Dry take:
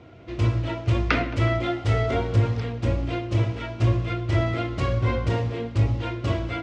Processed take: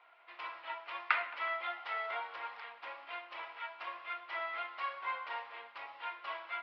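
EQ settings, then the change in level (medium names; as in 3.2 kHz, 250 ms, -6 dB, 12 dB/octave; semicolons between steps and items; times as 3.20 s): Chebyshev band-pass 900–5200 Hz, order 3; distance through air 380 m; -2.0 dB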